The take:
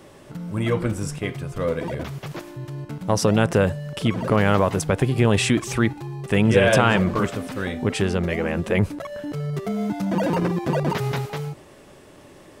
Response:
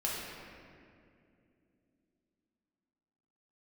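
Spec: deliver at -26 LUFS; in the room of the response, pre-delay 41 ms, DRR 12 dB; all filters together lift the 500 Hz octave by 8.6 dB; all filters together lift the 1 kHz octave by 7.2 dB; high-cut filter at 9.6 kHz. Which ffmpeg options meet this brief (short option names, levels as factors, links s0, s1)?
-filter_complex "[0:a]lowpass=9600,equalizer=f=500:t=o:g=8.5,equalizer=f=1000:t=o:g=6.5,asplit=2[s0][s1];[1:a]atrim=start_sample=2205,adelay=41[s2];[s1][s2]afir=irnorm=-1:irlink=0,volume=0.133[s3];[s0][s3]amix=inputs=2:normalize=0,volume=0.355"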